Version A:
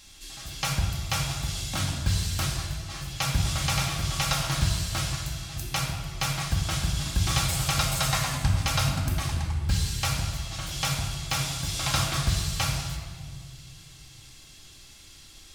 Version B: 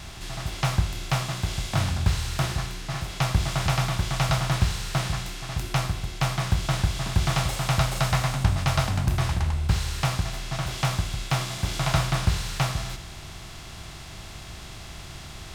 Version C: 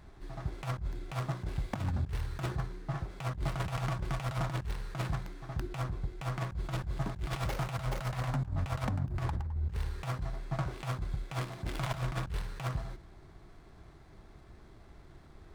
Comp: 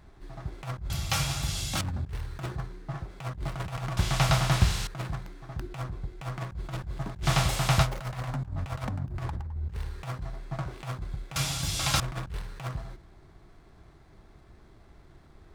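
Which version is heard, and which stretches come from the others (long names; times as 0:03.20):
C
0:00.90–0:01.81: punch in from A
0:03.97–0:04.87: punch in from B
0:07.25–0:07.85: punch in from B, crossfade 0.06 s
0:11.36–0:12.00: punch in from A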